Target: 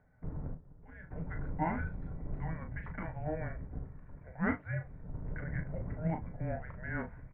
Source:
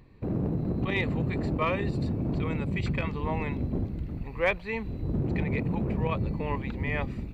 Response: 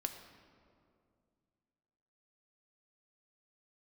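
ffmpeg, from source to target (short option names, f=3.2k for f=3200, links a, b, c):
-filter_complex "[0:a]asplit=3[a][b][c];[a]afade=t=out:st=0.53:d=0.02[d];[b]agate=range=-16dB:threshold=-23dB:ratio=16:detection=peak,afade=t=in:st=0.53:d=0.02,afade=t=out:st=1.1:d=0.02[e];[c]afade=t=in:st=1.1:d=0.02[f];[d][e][f]amix=inputs=3:normalize=0,asplit=2[g][h];[h]adelay=37,volume=-8.5dB[i];[g][i]amix=inputs=2:normalize=0[j];[1:a]atrim=start_sample=2205,atrim=end_sample=3528,asetrate=74970,aresample=44100[k];[j][k]afir=irnorm=-1:irlink=0,highpass=f=230:t=q:w=0.5412,highpass=f=230:t=q:w=1.307,lowpass=f=2.1k:t=q:w=0.5176,lowpass=f=2.1k:t=q:w=0.7071,lowpass=f=2.1k:t=q:w=1.932,afreqshift=-320,volume=1dB"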